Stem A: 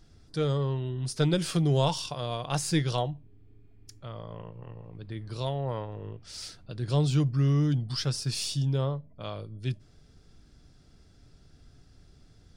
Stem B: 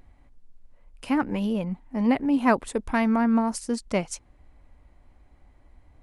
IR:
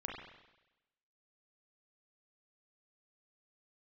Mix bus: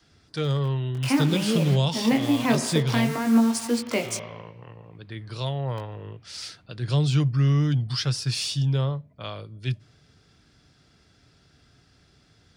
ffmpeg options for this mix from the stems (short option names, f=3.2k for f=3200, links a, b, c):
-filter_complex "[0:a]adynamicequalizer=threshold=0.01:dfrequency=120:dqfactor=1.9:tfrequency=120:tqfactor=1.9:attack=5:release=100:ratio=0.375:range=3.5:mode=boostabove:tftype=bell,volume=-1dB[a];[1:a]acrusher=bits=6:mix=0:aa=0.000001,highpass=f=220:w=0.5412,highpass=f=220:w=1.3066,flanger=delay=16.5:depth=6:speed=0.55,volume=2dB,asplit=2[b][c];[c]volume=-4.5dB[d];[2:a]atrim=start_sample=2205[e];[d][e]afir=irnorm=-1:irlink=0[f];[a][b][f]amix=inputs=3:normalize=0,highpass=79,equalizer=f=2.2k:t=o:w=2.8:g=8.5,acrossover=split=490|3000[g][h][i];[h]acompressor=threshold=-33dB:ratio=6[j];[g][j][i]amix=inputs=3:normalize=0"